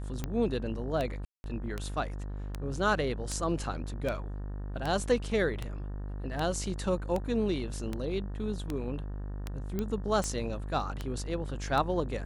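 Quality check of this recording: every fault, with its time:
mains buzz 50 Hz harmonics 37 −37 dBFS
scratch tick 78 rpm −19 dBFS
0:01.25–0:01.44: drop-out 191 ms
0:09.79: click −19 dBFS

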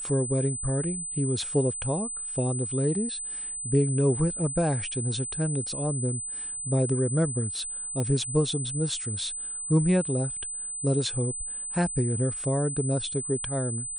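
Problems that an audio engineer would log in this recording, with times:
whistle 8,100 Hz −32 dBFS
0:08.00: click −18 dBFS

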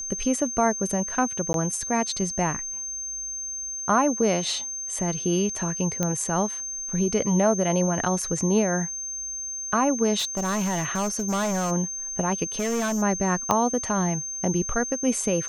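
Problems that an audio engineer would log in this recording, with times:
whistle 6,300 Hz −30 dBFS
0:01.53–0:01.54: drop-out 12 ms
0:06.03: click −11 dBFS
0:10.18–0:11.72: clipping −22 dBFS
0:12.59–0:13.03: clipping −22.5 dBFS
0:13.51: click −8 dBFS

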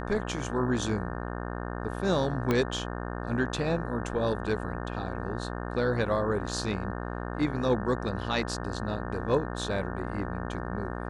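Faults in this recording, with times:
mains buzz 60 Hz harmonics 30 −35 dBFS
0:02.51: click −13 dBFS

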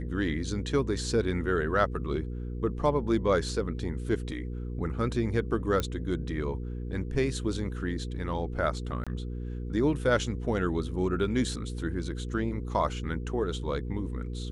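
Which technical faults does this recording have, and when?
mains hum 60 Hz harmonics 8 −35 dBFS
0:05.80: click −15 dBFS
0:09.04–0:09.07: drop-out 26 ms

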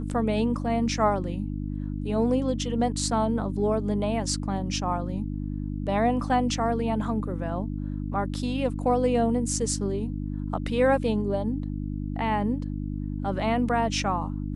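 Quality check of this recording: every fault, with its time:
mains hum 50 Hz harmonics 6 −31 dBFS

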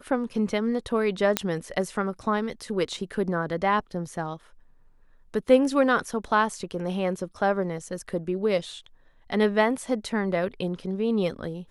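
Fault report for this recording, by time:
0:01.37: click −5 dBFS

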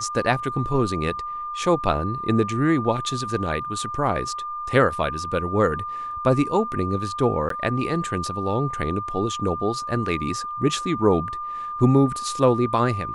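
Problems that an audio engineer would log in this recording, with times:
whistle 1,200 Hz −28 dBFS
0:07.49–0:07.50: drop-out 13 ms

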